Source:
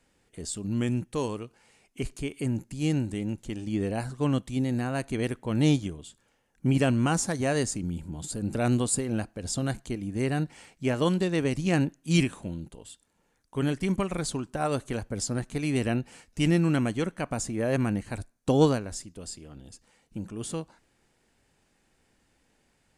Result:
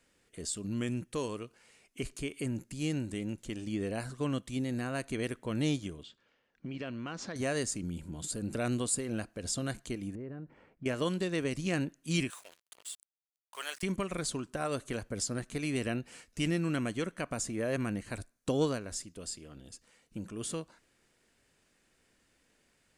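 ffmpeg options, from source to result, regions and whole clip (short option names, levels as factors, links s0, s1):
-filter_complex "[0:a]asettb=1/sr,asplit=3[s0][s1][s2];[s0]atrim=end=6.034[s3];[s1]atrim=start=6.03:end=7.36,asetpts=PTS-STARTPTS,afade=t=in:d=0.004:c=qsin,afade=t=out:st=1.326:d=0.004:c=qsin,lowpass=f=4700:w=0.5412,lowpass=f=4700:w=1.3066,lowshelf=f=100:g=-10,acompressor=threshold=0.0224:ratio=5:attack=3.2:release=140:knee=1:detection=peak[s4];[s2]atrim=start=7.356[s5];[s3][s4]acrossfade=d=0.004:c1=hsin:c2=qsin[s6];[s6][s5]acrossfade=d=0.004:c1=qsin:c2=hsin,asettb=1/sr,asplit=3[s7][s8][s9];[s7]atrim=end=10.154[s10];[s8]atrim=start=10.15:end=10.86,asetpts=PTS-STARTPTS,afade=t=in:d=0.004:c=qsin,afade=t=out:st=0.706:d=0.004:c=qsin,lowpass=1000,bandreject=f=720:w=13,acompressor=threshold=0.02:ratio=10:attack=3.2:release=140:knee=1:detection=peak[s11];[s9]atrim=start=10.856[s12];[s10][s11]acrossfade=d=0.004:c1=hsin:c2=qsin[s13];[s13][s12]acrossfade=d=0.004:c1=qsin:c2=hsin,asettb=1/sr,asplit=3[s14][s15][s16];[s14]atrim=end=12.304[s17];[s15]atrim=start=12.3:end=13.83,asetpts=PTS-STARTPTS,afade=t=in:d=0.004:c=qsin,afade=t=out:st=1.526:d=0.004:c=qsin,highpass=f=690:w=0.5412,highpass=f=690:w=1.3066,highshelf=f=3700:g=5.5,acrusher=bits=7:mix=0:aa=0.5[s18];[s16]atrim=start=13.826[s19];[s17][s18]acrossfade=d=0.004:c1=hsin:c2=qsin[s20];[s20][s19]acrossfade=d=0.004:c1=qsin:c2=hsin,lowshelf=f=290:g=-6.5,acompressor=threshold=0.02:ratio=1.5,equalizer=f=830:t=o:w=0.33:g=-8"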